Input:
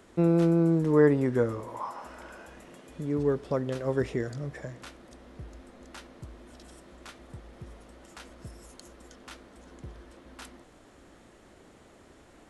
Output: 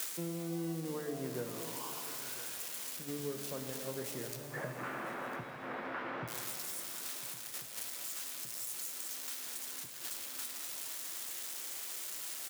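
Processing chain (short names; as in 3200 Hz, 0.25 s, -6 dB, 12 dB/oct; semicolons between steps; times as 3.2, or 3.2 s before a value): switching spikes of -18 dBFS; HPF 130 Hz 24 dB/oct; notches 50/100/150/200/250/300 Hz; gate -32 dBFS, range -10 dB; 4.36–6.28 LPF 1600 Hz 24 dB/oct; compressor 16:1, threshold -41 dBFS, peak gain reduction 24 dB; echo 1.002 s -17.5 dB; shimmer reverb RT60 2.8 s, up +7 st, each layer -8 dB, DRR 5 dB; gain +4.5 dB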